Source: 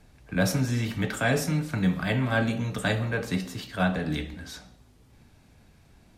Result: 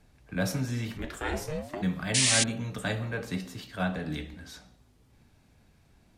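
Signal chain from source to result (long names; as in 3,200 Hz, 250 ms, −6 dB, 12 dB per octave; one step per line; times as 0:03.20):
0:00.97–0:01.81: ring modulation 110 Hz → 530 Hz
0:02.14–0:02.44: sound drawn into the spectrogram noise 1,700–10,000 Hz −19 dBFS
level −5 dB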